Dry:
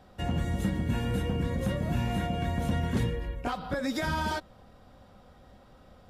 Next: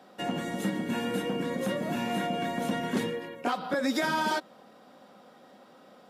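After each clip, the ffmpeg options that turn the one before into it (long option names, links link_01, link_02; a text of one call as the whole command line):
ffmpeg -i in.wav -af "highpass=frequency=210:width=0.5412,highpass=frequency=210:width=1.3066,volume=3.5dB" out.wav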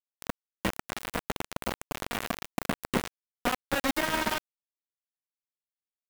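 ffmpeg -i in.wav -filter_complex "[0:a]acrusher=bits=3:mix=0:aa=0.000001,acrossover=split=3000[link_01][link_02];[link_02]acompressor=threshold=-36dB:ratio=4:attack=1:release=60[link_03];[link_01][link_03]amix=inputs=2:normalize=0,highshelf=frequency=7900:gain=6.5" out.wav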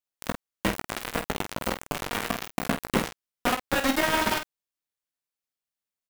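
ffmpeg -i in.wav -af "aecho=1:1:19|49:0.335|0.376,volume=3dB" out.wav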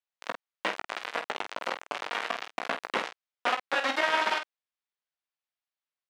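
ffmpeg -i in.wav -af "highpass=590,lowpass=4000" out.wav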